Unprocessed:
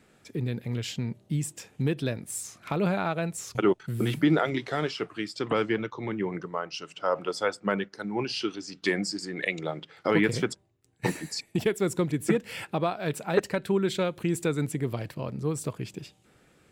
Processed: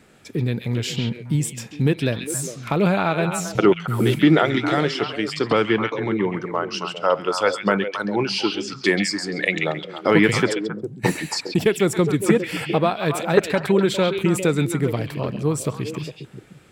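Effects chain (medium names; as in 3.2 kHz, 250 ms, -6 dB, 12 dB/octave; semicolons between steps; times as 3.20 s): repeats whose band climbs or falls 135 ms, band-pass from 2.9 kHz, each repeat -1.4 oct, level -2 dB; trim +7.5 dB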